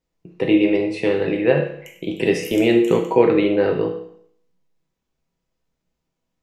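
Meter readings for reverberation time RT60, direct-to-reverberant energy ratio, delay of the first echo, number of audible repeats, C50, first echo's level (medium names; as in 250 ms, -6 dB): 0.65 s, 1.0 dB, no echo, no echo, 7.0 dB, no echo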